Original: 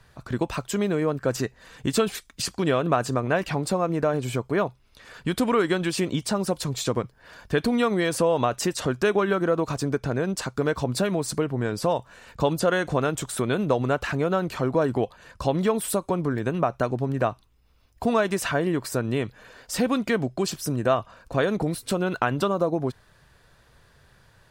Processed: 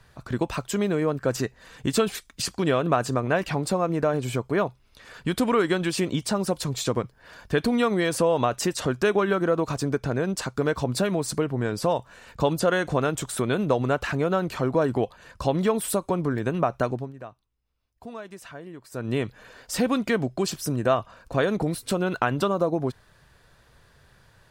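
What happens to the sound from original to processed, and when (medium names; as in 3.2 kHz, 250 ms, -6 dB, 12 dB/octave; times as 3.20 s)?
16.89–19.13 s: dip -16.5 dB, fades 0.23 s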